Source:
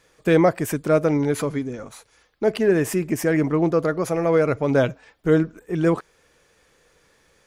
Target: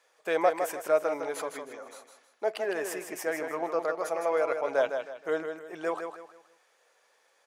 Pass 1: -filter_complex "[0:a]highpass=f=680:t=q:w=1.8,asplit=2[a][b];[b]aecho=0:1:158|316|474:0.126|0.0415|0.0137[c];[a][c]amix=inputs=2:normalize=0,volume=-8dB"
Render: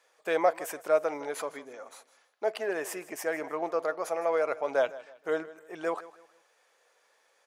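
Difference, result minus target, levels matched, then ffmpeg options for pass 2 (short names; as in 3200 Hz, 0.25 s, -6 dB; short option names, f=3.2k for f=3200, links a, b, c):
echo-to-direct -11 dB
-filter_complex "[0:a]highpass=f=680:t=q:w=1.8,asplit=2[a][b];[b]aecho=0:1:158|316|474|632:0.447|0.147|0.0486|0.0161[c];[a][c]amix=inputs=2:normalize=0,volume=-8dB"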